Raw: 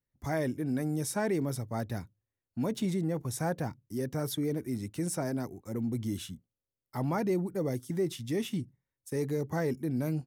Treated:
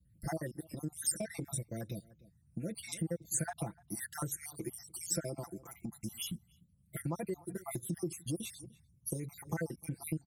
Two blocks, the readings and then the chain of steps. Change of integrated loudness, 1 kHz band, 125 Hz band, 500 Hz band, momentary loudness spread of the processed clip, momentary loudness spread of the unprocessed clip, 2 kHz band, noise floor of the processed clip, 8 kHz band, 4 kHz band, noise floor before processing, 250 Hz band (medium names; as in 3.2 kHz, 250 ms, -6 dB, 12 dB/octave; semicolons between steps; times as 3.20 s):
-6.5 dB, -8.0 dB, -7.0 dB, -10.0 dB, 10 LU, 7 LU, -6.0 dB, -69 dBFS, +4.5 dB, -3.0 dB, under -85 dBFS, -9.5 dB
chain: random holes in the spectrogram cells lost 67%; echo from a far wall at 51 m, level -28 dB; compression 10:1, threshold -39 dBFS, peak gain reduction 13.5 dB; peaking EQ 10 kHz +14.5 dB 0.56 oct; comb 5.9 ms, depth 88%; band noise 54–170 Hz -69 dBFS; trim +2 dB